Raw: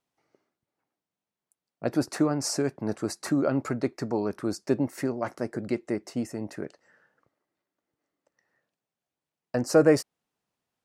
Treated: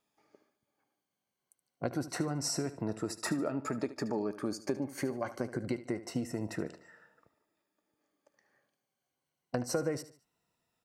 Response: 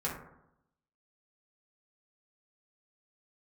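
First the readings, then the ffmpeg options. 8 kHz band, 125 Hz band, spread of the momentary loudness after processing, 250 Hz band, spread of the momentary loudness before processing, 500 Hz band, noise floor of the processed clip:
-4.0 dB, -6.0 dB, 6 LU, -8.0 dB, 12 LU, -9.5 dB, under -85 dBFS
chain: -filter_complex "[0:a]afftfilt=real='re*pow(10,9/40*sin(2*PI*(2*log(max(b,1)*sr/1024/100)/log(2)-(-0.26)*(pts-256)/sr)))':imag='im*pow(10,9/40*sin(2*PI*(2*log(max(b,1)*sr/1024/100)/log(2)-(-0.26)*(pts-256)/sr)))':win_size=1024:overlap=0.75,acompressor=threshold=-33dB:ratio=6,asplit=2[a][b];[b]aecho=0:1:74|148|222:0.188|0.0697|0.0258[c];[a][c]amix=inputs=2:normalize=0,volume=2dB"

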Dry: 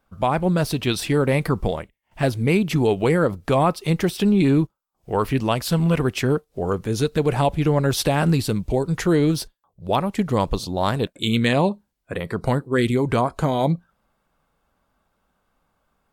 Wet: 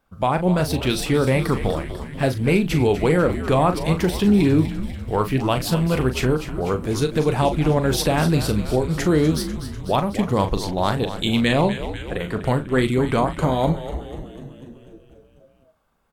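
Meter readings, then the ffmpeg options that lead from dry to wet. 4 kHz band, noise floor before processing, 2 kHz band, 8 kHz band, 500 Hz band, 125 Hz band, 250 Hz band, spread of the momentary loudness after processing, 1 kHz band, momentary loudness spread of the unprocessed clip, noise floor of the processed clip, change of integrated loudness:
+1.0 dB, -73 dBFS, +1.0 dB, +1.0 dB, +1.0 dB, +0.5 dB, +1.0 dB, 9 LU, +1.0 dB, 7 LU, -54 dBFS, +0.5 dB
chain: -filter_complex "[0:a]asplit=2[a][b];[b]adelay=39,volume=-9.5dB[c];[a][c]amix=inputs=2:normalize=0,asplit=2[d][e];[e]asplit=8[f][g][h][i][j][k][l][m];[f]adelay=247,afreqshift=-100,volume=-11dB[n];[g]adelay=494,afreqshift=-200,volume=-14.9dB[o];[h]adelay=741,afreqshift=-300,volume=-18.8dB[p];[i]adelay=988,afreqshift=-400,volume=-22.6dB[q];[j]adelay=1235,afreqshift=-500,volume=-26.5dB[r];[k]adelay=1482,afreqshift=-600,volume=-30.4dB[s];[l]adelay=1729,afreqshift=-700,volume=-34.3dB[t];[m]adelay=1976,afreqshift=-800,volume=-38.1dB[u];[n][o][p][q][r][s][t][u]amix=inputs=8:normalize=0[v];[d][v]amix=inputs=2:normalize=0"

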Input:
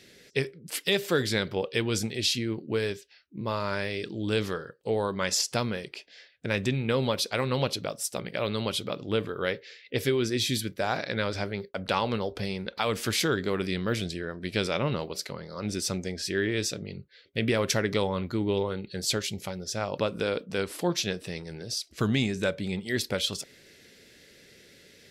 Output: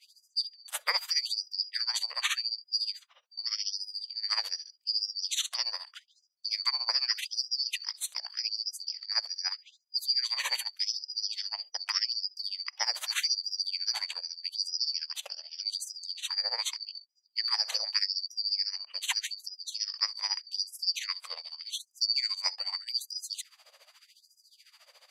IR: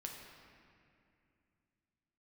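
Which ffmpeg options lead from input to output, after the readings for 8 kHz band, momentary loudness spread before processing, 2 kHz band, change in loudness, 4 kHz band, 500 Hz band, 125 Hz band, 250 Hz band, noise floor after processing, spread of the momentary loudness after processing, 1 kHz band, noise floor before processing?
-2.5 dB, 9 LU, -6.5 dB, -1.5 dB, +4.5 dB, -27.5 dB, under -40 dB, under -40 dB, -70 dBFS, 9 LU, -9.5 dB, -56 dBFS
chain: -af "afftfilt=real='real(if(lt(b,272),68*(eq(floor(b/68),0)*1+eq(floor(b/68),1)*2+eq(floor(b/68),2)*3+eq(floor(b/68),3)*0)+mod(b,68),b),0)':imag='imag(if(lt(b,272),68*(eq(floor(b/68),0)*1+eq(floor(b/68),1)*2+eq(floor(b/68),2)*3+eq(floor(b/68),3)*0)+mod(b,68),b),0)':win_size=2048:overlap=0.75,tremolo=f=14:d=0.84,afftfilt=real='re*gte(b*sr/1024,440*pow(4900/440,0.5+0.5*sin(2*PI*0.83*pts/sr)))':imag='im*gte(b*sr/1024,440*pow(4900/440,0.5+0.5*sin(2*PI*0.83*pts/sr)))':win_size=1024:overlap=0.75"

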